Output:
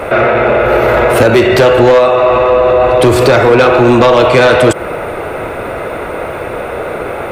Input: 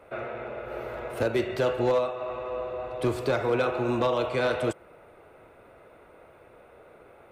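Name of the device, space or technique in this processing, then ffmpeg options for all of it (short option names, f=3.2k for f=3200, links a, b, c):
mastering chain: -af "equalizer=f=1.8k:t=o:w=0.77:g=1.5,acompressor=threshold=-28dB:ratio=2,asoftclip=type=tanh:threshold=-24dB,asoftclip=type=hard:threshold=-26.5dB,alimiter=level_in=34dB:limit=-1dB:release=50:level=0:latency=1,volume=-1dB"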